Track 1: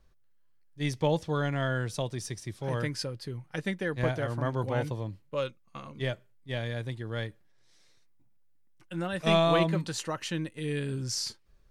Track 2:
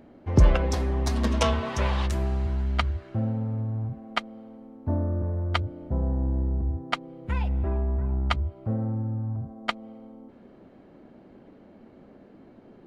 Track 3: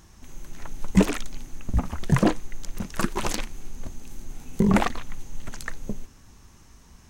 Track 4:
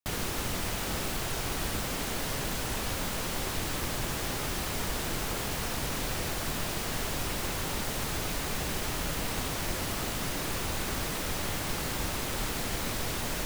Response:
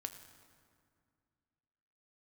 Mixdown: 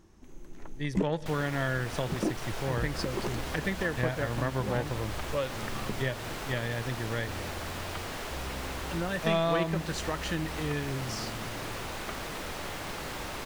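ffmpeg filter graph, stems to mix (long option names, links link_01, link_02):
-filter_complex "[0:a]dynaudnorm=framelen=170:gausssize=11:maxgain=9dB,aeval=exprs='0.631*(cos(1*acos(clip(val(0)/0.631,-1,1)))-cos(1*PI/2))+0.0282*(cos(7*acos(clip(val(0)/0.631,-1,1)))-cos(7*PI/2))':channel_layout=same,equalizer=frequency=1800:width=5.4:gain=6,volume=-6dB,asplit=3[link_01][link_02][link_03];[link_02]volume=-6.5dB[link_04];[1:a]adelay=2400,volume=-16dB[link_05];[2:a]equalizer=frequency=350:width_type=o:width=1.3:gain=10,volume=-9dB[link_06];[3:a]highshelf=frequency=7200:gain=-4.5,acrossover=split=350|3000[link_07][link_08][link_09];[link_07]acompressor=threshold=-39dB:ratio=6[link_10];[link_10][link_08][link_09]amix=inputs=3:normalize=0,adelay=1200,volume=-1dB[link_11];[link_03]apad=whole_len=312892[link_12];[link_06][link_12]sidechaincompress=threshold=-38dB:ratio=8:attack=16:release=112[link_13];[4:a]atrim=start_sample=2205[link_14];[link_04][link_14]afir=irnorm=-1:irlink=0[link_15];[link_01][link_05][link_13][link_11][link_15]amix=inputs=5:normalize=0,highshelf=frequency=4200:gain=-6.5,acompressor=threshold=-29dB:ratio=2"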